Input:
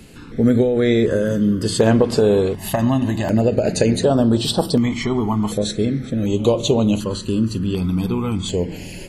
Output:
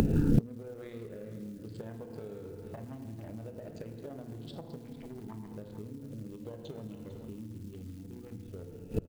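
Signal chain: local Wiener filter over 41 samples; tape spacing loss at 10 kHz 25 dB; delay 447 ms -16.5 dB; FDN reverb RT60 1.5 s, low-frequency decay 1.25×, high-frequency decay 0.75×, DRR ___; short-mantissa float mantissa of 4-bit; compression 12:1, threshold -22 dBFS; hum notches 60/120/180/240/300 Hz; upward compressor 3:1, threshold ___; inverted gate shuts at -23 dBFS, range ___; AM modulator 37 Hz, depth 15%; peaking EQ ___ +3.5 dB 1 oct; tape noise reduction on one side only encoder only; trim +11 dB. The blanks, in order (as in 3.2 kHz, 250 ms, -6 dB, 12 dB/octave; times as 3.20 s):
5.5 dB, -31 dBFS, -29 dB, 140 Hz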